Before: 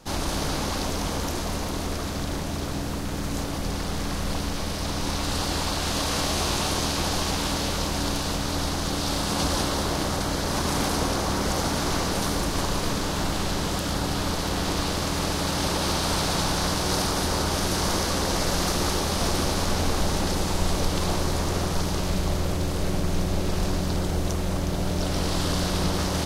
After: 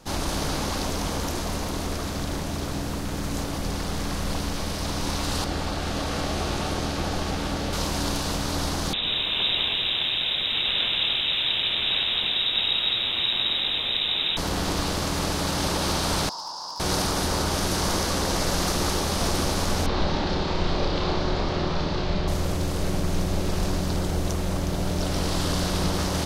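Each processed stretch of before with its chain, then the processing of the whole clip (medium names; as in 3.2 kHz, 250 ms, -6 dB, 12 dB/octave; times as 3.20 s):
5.44–7.73 s: treble shelf 3.6 kHz -10.5 dB + band-stop 1 kHz, Q 7.8
8.93–14.37 s: frequency inversion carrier 3.8 kHz + bit-crushed delay 99 ms, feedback 55%, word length 8-bit, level -12 dB
16.29–16.80 s: two resonant band-passes 2.2 kHz, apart 2.4 oct + overload inside the chain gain 27.5 dB
19.86–22.28 s: Chebyshev low-pass 4.3 kHz, order 3 + flutter echo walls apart 5.2 m, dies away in 0.33 s
whole clip: none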